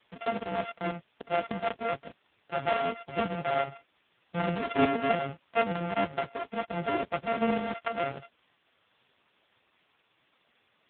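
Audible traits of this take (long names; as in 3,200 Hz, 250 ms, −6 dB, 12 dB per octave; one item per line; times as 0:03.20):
a buzz of ramps at a fixed pitch in blocks of 64 samples
tremolo saw up 3.3 Hz, depth 55%
a quantiser's noise floor 10 bits, dither triangular
AMR narrowband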